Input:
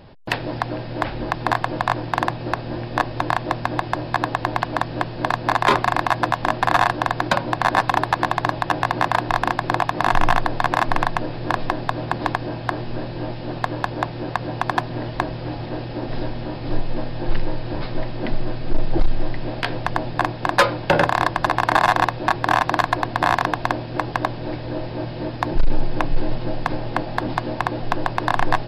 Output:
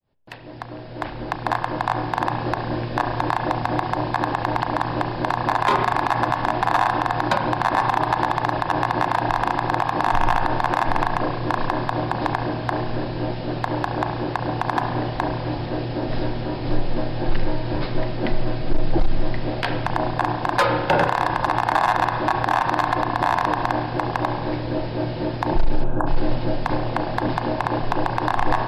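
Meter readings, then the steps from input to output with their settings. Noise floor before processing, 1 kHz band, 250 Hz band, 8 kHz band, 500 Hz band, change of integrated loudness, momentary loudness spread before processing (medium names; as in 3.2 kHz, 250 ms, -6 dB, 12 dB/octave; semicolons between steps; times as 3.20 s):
-31 dBFS, 0.0 dB, +1.5 dB, no reading, 0.0 dB, 0.0 dB, 10 LU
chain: fade-in on the opening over 2.50 s; dynamic bell 860 Hz, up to +6 dB, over -33 dBFS, Q 2.9; spectral selection erased 25.84–26.07 s, 1.7–6.7 kHz; spring tank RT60 1.3 s, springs 33 ms, chirp 55 ms, DRR 9.5 dB; loudness maximiser +10 dB; trim -8 dB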